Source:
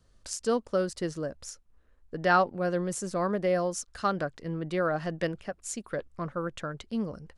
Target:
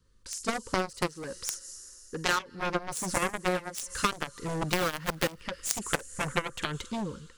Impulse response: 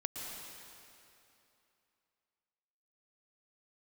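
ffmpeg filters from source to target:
-filter_complex "[0:a]dynaudnorm=f=180:g=7:m=3.98,asettb=1/sr,asplit=3[s0][s1][s2];[s0]atrim=end=1.084[s3];[s1]atrim=start=1.08:end=2.48,asetpts=PTS-STARTPTS,afade=t=in:d=0.004:c=qsin,afade=t=out:st=1.396:d=0.004:c=qsin,lowshelf=f=360:g=-8[s4];[s2]atrim=start=2.476[s5];[s3][s4]acrossfade=d=0.004:c1=hsin:c2=qsin[s6];[s6][s5]acrossfade=d=0.004:c1=qsin:c2=hsin,asplit=3[s7][s8][s9];[s7]afade=t=out:st=3.29:d=0.02[s10];[s8]agate=range=0.0224:threshold=0.224:ratio=3:detection=peak,afade=t=in:st=3.29:d=0.02,afade=t=out:st=3.73:d=0.02[s11];[s9]afade=t=in:st=3.73:d=0.02[s12];[s10][s11][s12]amix=inputs=3:normalize=0,asuperstop=centerf=700:order=20:qfactor=2.1,asplit=2[s13][s14];[s14]aderivative[s15];[1:a]atrim=start_sample=2205,highshelf=f=3100:g=7.5,adelay=47[s16];[s15][s16]afir=irnorm=-1:irlink=0,volume=0.299[s17];[s13][s17]amix=inputs=2:normalize=0,asoftclip=type=hard:threshold=0.316,asettb=1/sr,asplit=3[s18][s19][s20];[s18]atrim=end=4.694[s21];[s19]atrim=start=4.69:end=5.41,asetpts=PTS-STARTPTS,afade=t=in:d=0.004:c=qsin,afade=t=out:st=0.716:d=0.004:c=qsin,acrusher=bits=4:mode=log:mix=0:aa=0.000001[s22];[s20]atrim=start=5.406[s23];[s21][s22]acrossfade=d=0.004:c1=hsin:c2=qsin[s24];[s24][s23]acrossfade=d=0.004:c1=qsin:c2=hsin,aeval=exprs='0.316*(cos(1*acos(clip(val(0)/0.316,-1,1)))-cos(1*PI/2))+0.141*(cos(3*acos(clip(val(0)/0.316,-1,1)))-cos(3*PI/2))':c=same,acompressor=threshold=0.0282:ratio=8,volume=2.11"

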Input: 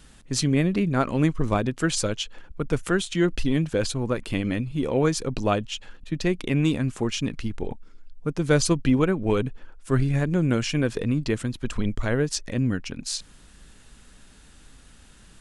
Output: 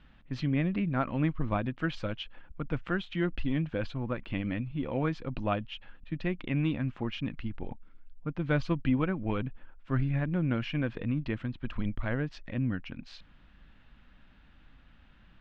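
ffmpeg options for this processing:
-af "lowpass=f=3100:w=0.5412,lowpass=f=3100:w=1.3066,equalizer=f=420:w=3.7:g=-9.5,volume=0.501"

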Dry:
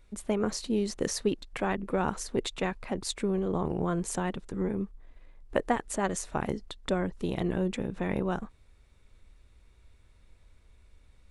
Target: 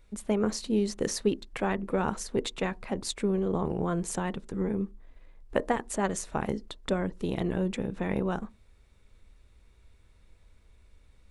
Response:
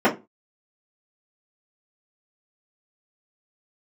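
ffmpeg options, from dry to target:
-filter_complex "[0:a]asplit=2[s0][s1];[1:a]atrim=start_sample=2205,lowpass=1600[s2];[s1][s2]afir=irnorm=-1:irlink=0,volume=0.015[s3];[s0][s3]amix=inputs=2:normalize=0"

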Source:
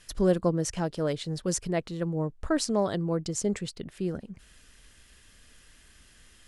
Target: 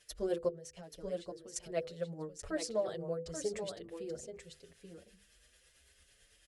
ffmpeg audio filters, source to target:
-filter_complex "[0:a]highpass=40,tremolo=f=9:d=0.56,equalizer=f=125:t=o:w=1:g=-5,equalizer=f=250:t=o:w=1:g=-11,equalizer=f=500:t=o:w=1:g=8,equalizer=f=1000:t=o:w=1:g=-8,asettb=1/sr,asplit=3[s0][s1][s2];[s0]atrim=end=0.484[s3];[s1]atrim=start=0.48:end=1.56,asetpts=PTS-STARTPTS,afade=t=in:d=0.004:c=qsin,afade=t=out:st=1.076:d=0.004:c=qsin,acompressor=threshold=0.00794:ratio=5[s4];[s2]atrim=start=1.556[s5];[s3][s4]acrossfade=d=0.004:c1=hsin:c2=qsin[s6];[s6][s5]acrossfade=d=0.004:c1=qsin:c2=hsin,bandreject=f=50:t=h:w=6,bandreject=f=100:t=h:w=6,bandreject=f=150:t=h:w=6,bandreject=f=200:t=h:w=6,bandreject=f=250:t=h:w=6,bandreject=f=300:t=h:w=6,bandreject=f=350:t=h:w=6,bandreject=f=400:t=h:w=6,bandreject=f=450:t=h:w=6,bandreject=f=500:t=h:w=6,asplit=2[s7][s8];[s8]aecho=0:1:831:0.447[s9];[s7][s9]amix=inputs=2:normalize=0,asplit=2[s10][s11];[s11]adelay=6.5,afreqshift=0.78[s12];[s10][s12]amix=inputs=2:normalize=1,volume=0.708"

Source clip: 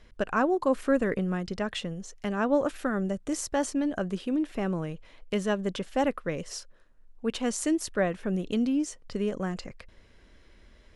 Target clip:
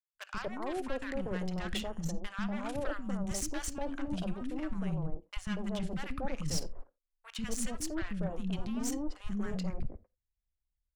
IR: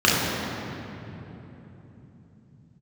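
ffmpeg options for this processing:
-filter_complex "[0:a]agate=range=0.00316:threshold=0.00794:ratio=16:detection=peak,asubboost=boost=7.5:cutoff=140,areverse,acompressor=threshold=0.0158:ratio=5,areverse,aeval=exprs='0.0531*(cos(1*acos(clip(val(0)/0.0531,-1,1)))-cos(1*PI/2))+0.00596*(cos(8*acos(clip(val(0)/0.0531,-1,1)))-cos(8*PI/2))':c=same,acrossover=split=270|980[s0][s1][s2];[s0]adelay=140[s3];[s1]adelay=240[s4];[s3][s4][s2]amix=inputs=3:normalize=0,asplit=2[s5][s6];[1:a]atrim=start_sample=2205,atrim=end_sample=3087,adelay=20[s7];[s6][s7]afir=irnorm=-1:irlink=0,volume=0.0168[s8];[s5][s8]amix=inputs=2:normalize=0,volume=1.5"

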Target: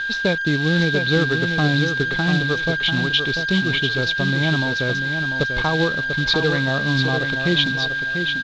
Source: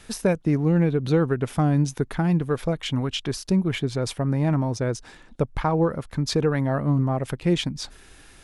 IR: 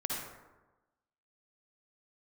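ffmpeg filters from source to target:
-af "aeval=exprs='val(0)+0.0631*sin(2*PI*1600*n/s)':c=same,aresample=16000,acrusher=bits=4:mode=log:mix=0:aa=0.000001,aresample=44100,lowpass=f=3800:t=q:w=6.5,aecho=1:1:693|1386|2079:0.447|0.112|0.0279"

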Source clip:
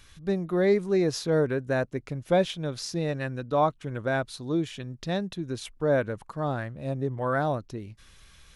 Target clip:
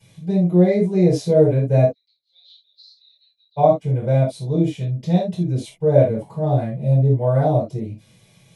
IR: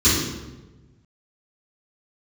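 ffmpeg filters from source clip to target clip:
-filter_complex "[0:a]asplit=3[s0][s1][s2];[s0]afade=t=out:st=1.84:d=0.02[s3];[s1]asuperpass=centerf=4100:order=4:qfactor=7,afade=t=in:st=1.84:d=0.02,afade=t=out:st=3.56:d=0.02[s4];[s2]afade=t=in:st=3.56:d=0.02[s5];[s3][s4][s5]amix=inputs=3:normalize=0[s6];[1:a]atrim=start_sample=2205,afade=t=out:st=0.23:d=0.01,atrim=end_sample=10584,asetrate=88200,aresample=44100[s7];[s6][s7]afir=irnorm=-1:irlink=0,volume=0.211"

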